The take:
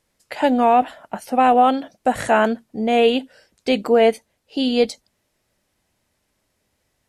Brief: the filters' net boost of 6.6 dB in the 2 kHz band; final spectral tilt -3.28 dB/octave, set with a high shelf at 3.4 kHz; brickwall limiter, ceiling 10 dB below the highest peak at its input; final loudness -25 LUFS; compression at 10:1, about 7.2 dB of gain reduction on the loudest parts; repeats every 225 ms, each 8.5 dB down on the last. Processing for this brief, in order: peaking EQ 2 kHz +7 dB; treble shelf 3.4 kHz +6 dB; compression 10:1, threshold -16 dBFS; peak limiter -16.5 dBFS; feedback delay 225 ms, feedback 38%, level -8.5 dB; trim +2 dB

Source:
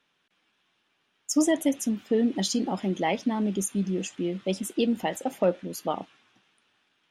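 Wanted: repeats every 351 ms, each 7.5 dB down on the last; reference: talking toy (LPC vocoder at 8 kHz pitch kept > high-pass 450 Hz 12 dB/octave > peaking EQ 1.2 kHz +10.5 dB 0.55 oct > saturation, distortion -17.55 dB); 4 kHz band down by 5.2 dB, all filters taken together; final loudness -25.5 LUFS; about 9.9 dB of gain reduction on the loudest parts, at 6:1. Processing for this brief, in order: peaking EQ 4 kHz -7.5 dB; compression 6:1, threshold -29 dBFS; feedback delay 351 ms, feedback 42%, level -7.5 dB; LPC vocoder at 8 kHz pitch kept; high-pass 450 Hz 12 dB/octave; peaking EQ 1.2 kHz +10.5 dB 0.55 oct; saturation -25.5 dBFS; trim +15.5 dB

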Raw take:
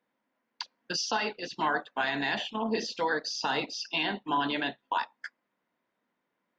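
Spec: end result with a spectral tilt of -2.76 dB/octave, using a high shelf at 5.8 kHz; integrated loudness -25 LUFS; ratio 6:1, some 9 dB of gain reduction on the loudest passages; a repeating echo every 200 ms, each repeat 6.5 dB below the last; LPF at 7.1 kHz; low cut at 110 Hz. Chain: high-pass 110 Hz; low-pass 7.1 kHz; treble shelf 5.8 kHz -6.5 dB; compression 6:1, threshold -34 dBFS; feedback delay 200 ms, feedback 47%, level -6.5 dB; trim +12.5 dB

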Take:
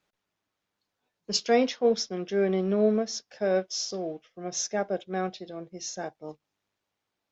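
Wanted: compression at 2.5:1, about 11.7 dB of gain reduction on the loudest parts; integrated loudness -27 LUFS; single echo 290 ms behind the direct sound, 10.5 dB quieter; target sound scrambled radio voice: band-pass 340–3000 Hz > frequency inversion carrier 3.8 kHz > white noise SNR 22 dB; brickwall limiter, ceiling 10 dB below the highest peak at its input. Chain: compression 2.5:1, threshold -36 dBFS; peak limiter -31.5 dBFS; band-pass 340–3000 Hz; delay 290 ms -10.5 dB; frequency inversion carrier 3.8 kHz; white noise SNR 22 dB; trim +14 dB

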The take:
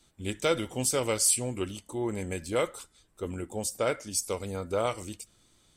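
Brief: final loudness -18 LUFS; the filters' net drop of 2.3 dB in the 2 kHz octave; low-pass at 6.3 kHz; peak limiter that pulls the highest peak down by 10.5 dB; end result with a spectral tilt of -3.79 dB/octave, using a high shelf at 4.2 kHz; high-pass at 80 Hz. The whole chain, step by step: high-pass 80 Hz; low-pass 6.3 kHz; peaking EQ 2 kHz -4.5 dB; treble shelf 4.2 kHz +7.5 dB; trim +17.5 dB; peak limiter -6 dBFS

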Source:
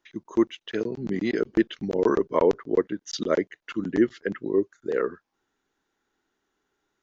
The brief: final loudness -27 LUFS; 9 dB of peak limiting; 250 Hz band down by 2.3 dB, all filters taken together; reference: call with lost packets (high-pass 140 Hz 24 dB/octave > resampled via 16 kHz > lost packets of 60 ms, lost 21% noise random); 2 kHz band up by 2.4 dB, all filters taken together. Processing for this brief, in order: peaking EQ 250 Hz -3.5 dB; peaking EQ 2 kHz +3 dB; peak limiter -17.5 dBFS; high-pass 140 Hz 24 dB/octave; resampled via 16 kHz; lost packets of 60 ms, lost 21% noise random; trim +4 dB

